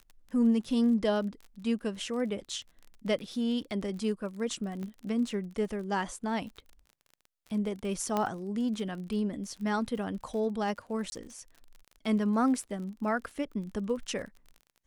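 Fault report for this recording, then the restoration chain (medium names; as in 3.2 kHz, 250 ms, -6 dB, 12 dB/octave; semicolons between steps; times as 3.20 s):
crackle 36 per s -40 dBFS
4.83 s: pop -28 dBFS
8.17 s: pop -16 dBFS
11.10–11.12 s: dropout 20 ms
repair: de-click; interpolate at 11.10 s, 20 ms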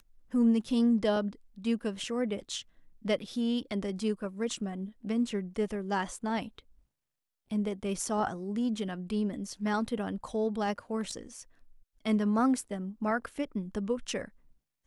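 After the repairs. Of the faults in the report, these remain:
4.83 s: pop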